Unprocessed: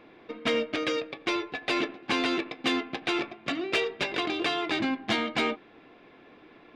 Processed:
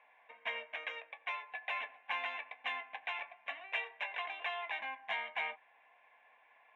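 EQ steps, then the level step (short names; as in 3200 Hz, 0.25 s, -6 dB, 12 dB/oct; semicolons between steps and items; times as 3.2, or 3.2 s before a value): ladder band-pass 1400 Hz, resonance 30%; fixed phaser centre 1300 Hz, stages 6; +7.0 dB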